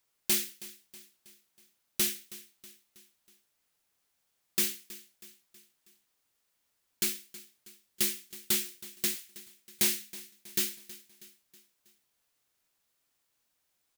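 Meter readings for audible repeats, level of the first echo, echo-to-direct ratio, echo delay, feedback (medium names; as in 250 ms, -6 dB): 3, -18.0 dB, -16.5 dB, 321 ms, 51%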